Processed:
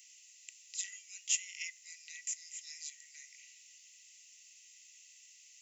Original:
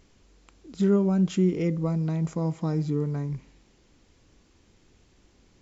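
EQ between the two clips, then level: tilt EQ +3.5 dB/octave; dynamic bell 3.5 kHz, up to -3 dB, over -53 dBFS, Q 0.73; rippled Chebyshev high-pass 1.9 kHz, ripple 9 dB; +5.5 dB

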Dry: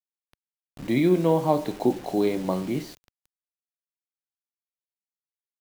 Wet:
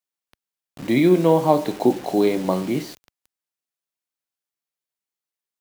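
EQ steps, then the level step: high-pass 140 Hz 6 dB/octave; +5.5 dB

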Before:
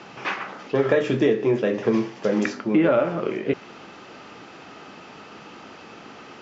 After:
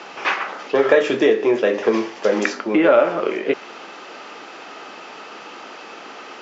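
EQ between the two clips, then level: high-pass 390 Hz 12 dB/octave; +7.0 dB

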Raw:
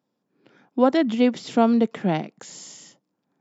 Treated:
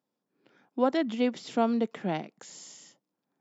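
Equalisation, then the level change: bass shelf 200 Hz -6.5 dB; -6.0 dB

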